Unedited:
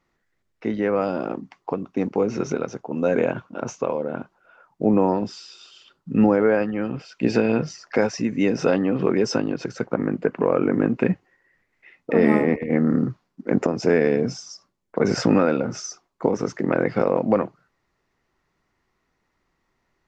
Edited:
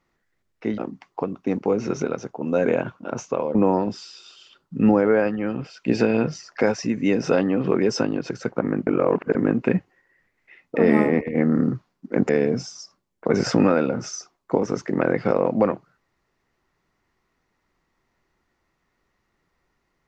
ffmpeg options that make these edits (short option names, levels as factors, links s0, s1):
-filter_complex "[0:a]asplit=6[s0][s1][s2][s3][s4][s5];[s0]atrim=end=0.782[s6];[s1]atrim=start=1.278:end=4.052[s7];[s2]atrim=start=4.898:end=10.222[s8];[s3]atrim=start=10.218:end=10.702,asetpts=PTS-STARTPTS,areverse[s9];[s4]atrim=start=10.698:end=13.642[s10];[s5]atrim=start=13.998[s11];[s6][s7]acrossfade=d=0.004:c1=hsin:c2=hsin[s12];[s12][s8]acrossfade=d=0.004:c1=hsin:c2=hsin[s13];[s13][s9]acrossfade=d=0.004:c1=hsin:c2=hsin[s14];[s14][s10]acrossfade=d=0.004:c1=hsin:c2=hsin[s15];[s15][s11]acrossfade=d=0.004:c1=hsin:c2=hsin"